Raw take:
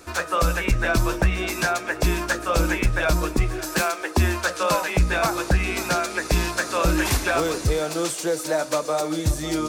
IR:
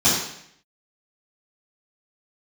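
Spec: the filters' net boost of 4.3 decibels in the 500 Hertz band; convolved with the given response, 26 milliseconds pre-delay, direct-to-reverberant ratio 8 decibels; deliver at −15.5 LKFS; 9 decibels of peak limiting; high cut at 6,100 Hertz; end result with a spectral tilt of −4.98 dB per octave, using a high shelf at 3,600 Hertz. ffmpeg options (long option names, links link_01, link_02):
-filter_complex "[0:a]lowpass=6100,equalizer=frequency=500:width_type=o:gain=5.5,highshelf=frequency=3600:gain=-6.5,alimiter=limit=-15dB:level=0:latency=1,asplit=2[link_01][link_02];[1:a]atrim=start_sample=2205,adelay=26[link_03];[link_02][link_03]afir=irnorm=-1:irlink=0,volume=-26.5dB[link_04];[link_01][link_04]amix=inputs=2:normalize=0,volume=8.5dB"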